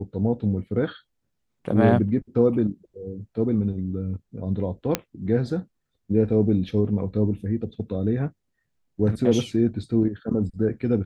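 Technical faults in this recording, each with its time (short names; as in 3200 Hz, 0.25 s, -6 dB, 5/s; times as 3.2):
4.95 pop -6 dBFS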